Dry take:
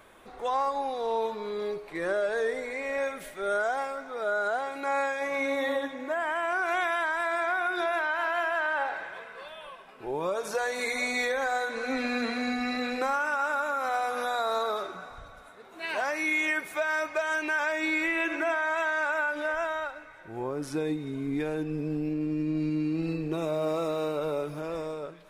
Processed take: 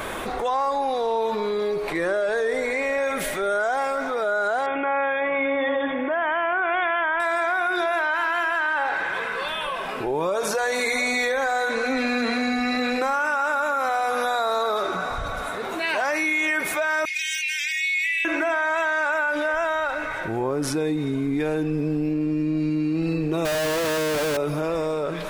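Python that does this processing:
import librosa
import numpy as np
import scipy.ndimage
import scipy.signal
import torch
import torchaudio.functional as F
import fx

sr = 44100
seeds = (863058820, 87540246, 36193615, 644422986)

y = fx.brickwall_lowpass(x, sr, high_hz=3600.0, at=(4.66, 7.2))
y = fx.peak_eq(y, sr, hz=640.0, db=-9.0, octaves=0.3, at=(8.14, 9.68))
y = fx.steep_highpass(y, sr, hz=2000.0, slope=72, at=(17.05, 18.25))
y = fx.schmitt(y, sr, flips_db=-47.5, at=(23.45, 24.37))
y = fx.env_flatten(y, sr, amount_pct=70)
y = y * 10.0 ** (3.0 / 20.0)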